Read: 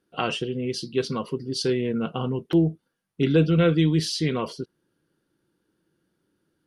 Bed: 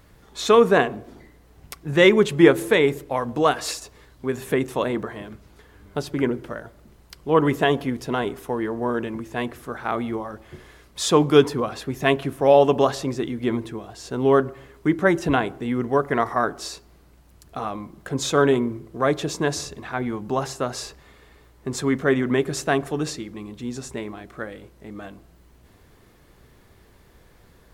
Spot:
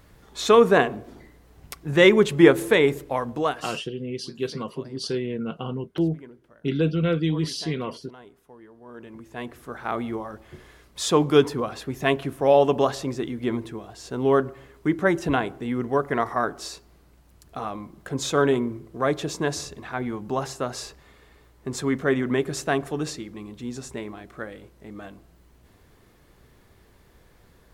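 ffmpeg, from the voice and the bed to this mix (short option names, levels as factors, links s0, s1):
-filter_complex "[0:a]adelay=3450,volume=0.668[s0];[1:a]volume=9.44,afade=t=out:st=3.08:d=0.79:silence=0.0794328,afade=t=in:st=8.85:d=1.08:silence=0.1[s1];[s0][s1]amix=inputs=2:normalize=0"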